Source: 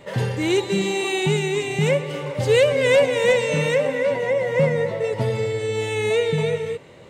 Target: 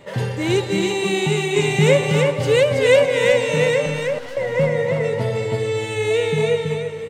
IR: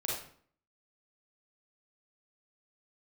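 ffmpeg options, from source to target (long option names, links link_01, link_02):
-filter_complex "[0:a]asettb=1/sr,asplit=3[link_01][link_02][link_03];[link_01]atrim=end=1.564[link_04];[link_02]atrim=start=1.56:end=2.31,asetpts=PTS-STARTPTS,afade=type=in:duration=0.004:curve=qsin,afade=type=out:start_time=0.746:duration=0.004:curve=qsin,acontrast=29[link_05];[link_03]atrim=start=2.306[link_06];[link_04][link_05]acrossfade=duration=0.004:curve1=hsin:curve2=qsin[link_07];[link_07][link_06]acrossfade=duration=0.004:curve1=qsin:curve2=hsin,asettb=1/sr,asplit=3[link_08][link_09][link_10];[link_08]atrim=end=3.864[link_11];[link_09]atrim=start=3.86:end=4.37,asetpts=PTS-STARTPTS,afade=type=in:duration=0.004:curve=qsin,afade=type=out:start_time=0.506:duration=0.004:curve=qsin,aeval=exprs='(tanh(50.1*val(0)+0.6)-tanh(0.6))/50.1':channel_layout=same[link_12];[link_10]atrim=start=4.366[link_13];[link_11][link_12]acrossfade=duration=0.004:curve1=hsin:curve2=qsin[link_14];[link_14][link_13]acrossfade=duration=0.004:curve1=qsin:curve2=hsin,aecho=1:1:325:0.708"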